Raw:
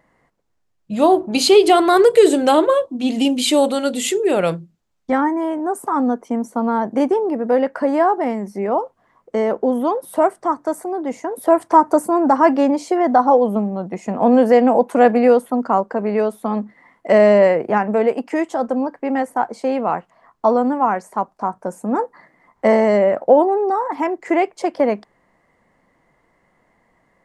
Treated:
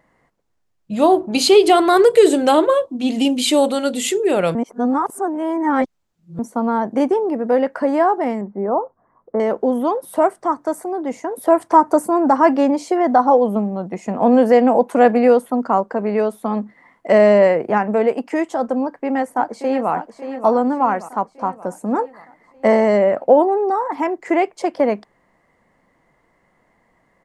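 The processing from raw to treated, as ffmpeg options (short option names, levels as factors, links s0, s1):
-filter_complex "[0:a]asettb=1/sr,asplit=3[s0][s1][s2];[s0]atrim=end=8.414[s3];[s1]atrim=start=8.41:end=9.4,asetpts=PTS-STARTPTS,afade=t=in:d=0.004:c=qsin,afade=t=out:st=0.986:d=0.004:c=qsin,lowpass=f=1400:w=0.5412,lowpass=f=1400:w=1.3066[s4];[s2]atrim=start=9.396[s5];[s3][s4]acrossfade=d=0.004:c1=hsin:c2=qsin[s6];[s6][s5]acrossfade=d=0.004:c1=qsin:c2=hsin,asplit=2[s7][s8];[s8]afade=t=in:st=18.8:d=0.01,afade=t=out:st=19.92:d=0.01,aecho=0:1:580|1160|1740|2320|2900|3480:0.316228|0.173925|0.0956589|0.0526124|0.0289368|0.0159152[s9];[s7][s9]amix=inputs=2:normalize=0,asplit=3[s10][s11][s12];[s10]atrim=end=4.552[s13];[s11]atrim=start=4.548:end=6.392,asetpts=PTS-STARTPTS,areverse[s14];[s12]atrim=start=6.388[s15];[s13][s14]acrossfade=d=0.004:c1=hsin:c2=hsin[s16];[s16][s15]acrossfade=d=0.004:c1=hsin:c2=hsin"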